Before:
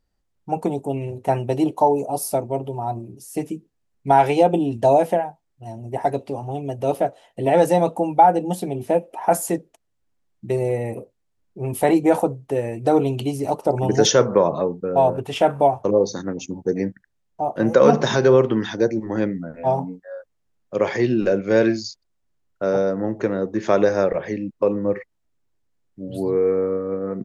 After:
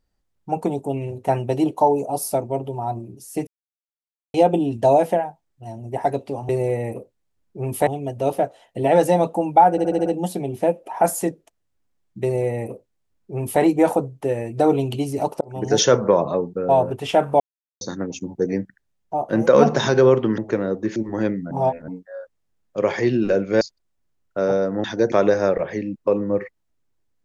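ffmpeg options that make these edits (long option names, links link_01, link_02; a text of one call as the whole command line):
ffmpeg -i in.wav -filter_complex "[0:a]asplit=20[link_01][link_02][link_03][link_04][link_05][link_06][link_07][link_08][link_09][link_10][link_11][link_12][link_13][link_14][link_15][link_16][link_17][link_18][link_19][link_20];[link_01]atrim=end=3.47,asetpts=PTS-STARTPTS,afade=type=out:start_time=3.466:duration=0.004:curve=hsin[link_21];[link_02]atrim=start=3.47:end=4.34,asetpts=PTS-STARTPTS,volume=0[link_22];[link_03]atrim=start=4.34:end=6.492,asetpts=PTS-STARTPTS,afade=type=in:duration=0.004:curve=hsin[link_23];[link_04]atrim=start=10.498:end=11.882[link_24];[link_05]atrim=start=6.488:end=8.402[link_25];[link_06]atrim=start=8.328:end=8.402[link_26];[link_07]atrim=start=8.328:end=8.402[link_27];[link_08]atrim=start=8.328:end=8.402[link_28];[link_09]atrim=start=8.328:end=8.402[link_29];[link_10]atrim=start=8.328:end=13.68,asetpts=PTS-STARTPTS,afade=type=out:start_time=5.348:duration=0.004:curve=hsin[link_30];[link_11]atrim=start=13.68:end=15.67,asetpts=PTS-STARTPTS,afade=type=in:duration=0.43,afade=type=out:start_time=1.986:duration=0.004:curve=hsin[link_31];[link_12]atrim=start=15.67:end=16.08,asetpts=PTS-STARTPTS,volume=0[link_32];[link_13]atrim=start=16.08:end=18.652,asetpts=PTS-STARTPTS,afade=type=in:duration=0.004:curve=hsin[link_33];[link_14]atrim=start=23.088:end=23.672[link_34];[link_15]atrim=start=18.928:end=19.482[link_35];[link_16]atrim=start=19.478:end=19.852,asetpts=PTS-STARTPTS,areverse[link_36];[link_17]atrim=start=19.848:end=21.582[link_37];[link_18]atrim=start=21.858:end=23.092[link_38];[link_19]atrim=start=18.648:end=18.932[link_39];[link_20]atrim=start=23.668[link_40];[link_21][link_22][link_23]concat=n=3:v=0:a=1[link_41];[link_41][link_24]acrossfade=duration=0.004:curve1=hsin:curve2=hsin[link_42];[link_42][link_25]acrossfade=duration=0.004:curve1=hsin:curve2=hsin[link_43];[link_43][link_26]acrossfade=duration=0.004:curve1=hsin:curve2=hsin[link_44];[link_44][link_27]acrossfade=duration=0.004:curve1=hsin:curve2=hsin[link_45];[link_45][link_28]acrossfade=duration=0.004:curve1=hsin:curve2=hsin[link_46];[link_46][link_29]acrossfade=duration=0.004:curve1=hsin:curve2=hsin[link_47];[link_30][link_31][link_32][link_33]concat=n=4:v=0:a=1[link_48];[link_47][link_48]acrossfade=duration=0.004:curve1=hsin:curve2=hsin[link_49];[link_49][link_34]acrossfade=duration=0.004:curve1=hsin:curve2=hsin[link_50];[link_50][link_35]acrossfade=duration=0.004:curve1=hsin:curve2=hsin[link_51];[link_51][link_36]acrossfade=duration=0.004:curve1=hsin:curve2=hsin[link_52];[link_52][link_37]acrossfade=duration=0.004:curve1=hsin:curve2=hsin[link_53];[link_53][link_38]acrossfade=duration=0.004:curve1=hsin:curve2=hsin[link_54];[link_54][link_39]acrossfade=duration=0.004:curve1=hsin:curve2=hsin[link_55];[link_55][link_40]acrossfade=duration=0.004:curve1=hsin:curve2=hsin" out.wav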